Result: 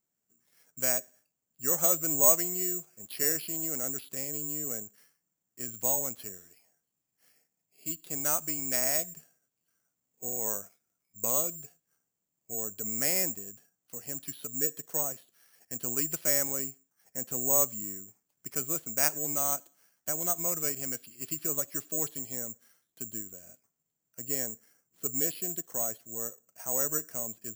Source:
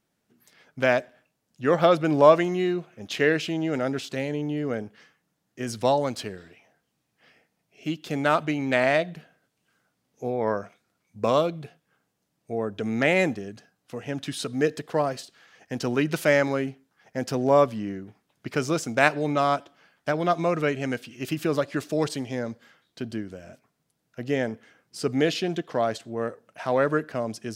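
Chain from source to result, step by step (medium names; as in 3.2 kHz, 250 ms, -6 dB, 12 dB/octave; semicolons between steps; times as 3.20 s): median filter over 3 samples; 24.51–26.96 s: distance through air 180 m; careless resampling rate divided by 6×, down filtered, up zero stuff; trim -14.5 dB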